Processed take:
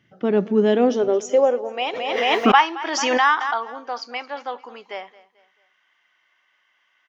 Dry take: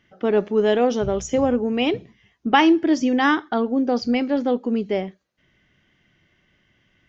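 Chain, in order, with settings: high-pass sweep 120 Hz -> 1 kHz, 0.10–2.04 s; on a send: feedback delay 220 ms, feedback 39%, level -19.5 dB; 1.93–3.79 s: on the sum: swell ahead of each attack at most 29 dB/s; trim -2 dB

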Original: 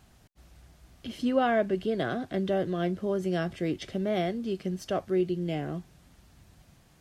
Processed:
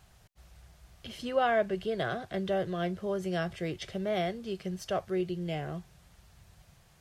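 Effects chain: peaking EQ 270 Hz -14 dB 0.63 oct

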